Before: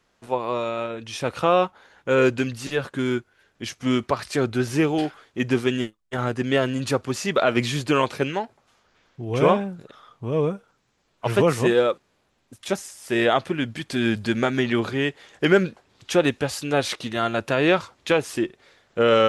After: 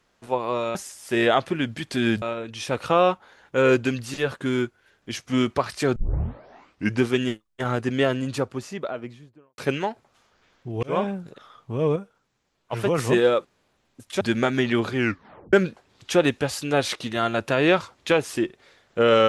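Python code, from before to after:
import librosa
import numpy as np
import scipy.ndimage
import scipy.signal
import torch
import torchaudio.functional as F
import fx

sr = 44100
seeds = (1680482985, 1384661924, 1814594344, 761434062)

y = fx.studio_fade_out(x, sr, start_s=6.34, length_s=1.77)
y = fx.edit(y, sr, fx.tape_start(start_s=4.49, length_s=1.07),
    fx.fade_in_span(start_s=9.36, length_s=0.28),
    fx.clip_gain(start_s=10.49, length_s=1.02, db=-4.5),
    fx.move(start_s=12.74, length_s=1.47, to_s=0.75),
    fx.tape_stop(start_s=14.95, length_s=0.58), tone=tone)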